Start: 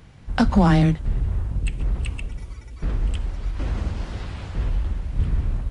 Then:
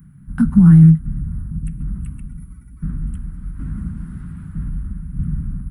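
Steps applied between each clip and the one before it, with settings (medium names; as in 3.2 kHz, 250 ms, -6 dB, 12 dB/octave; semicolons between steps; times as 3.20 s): FFT filter 110 Hz 0 dB, 160 Hz +14 dB, 260 Hz +4 dB, 480 Hz -24 dB, 710 Hz -22 dB, 1.4 kHz -2 dB, 2.6 kHz -19 dB, 4.4 kHz -24 dB, 6.6 kHz -20 dB, 11 kHz +14 dB; trim -2.5 dB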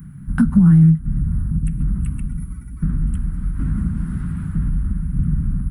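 compression 2:1, threshold -25 dBFS, peak gain reduction 11 dB; trim +7.5 dB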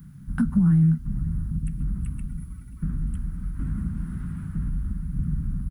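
bit crusher 10-bit; delay 533 ms -19 dB; trim -7.5 dB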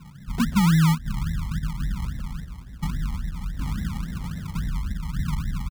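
resampled via 22.05 kHz; decimation with a swept rate 33×, swing 60% 3.6 Hz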